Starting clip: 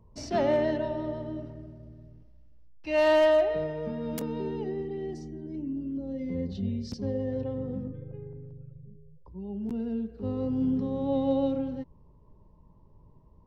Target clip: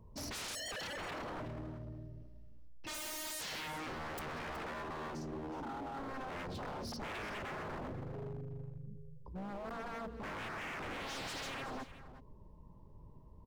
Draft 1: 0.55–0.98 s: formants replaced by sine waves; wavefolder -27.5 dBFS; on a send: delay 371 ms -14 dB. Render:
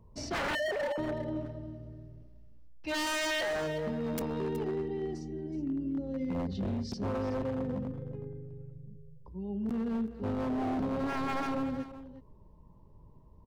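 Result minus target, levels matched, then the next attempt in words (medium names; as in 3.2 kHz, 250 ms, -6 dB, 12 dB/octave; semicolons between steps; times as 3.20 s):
wavefolder: distortion -23 dB
0.55–0.98 s: formants replaced by sine waves; wavefolder -38 dBFS; on a send: delay 371 ms -14 dB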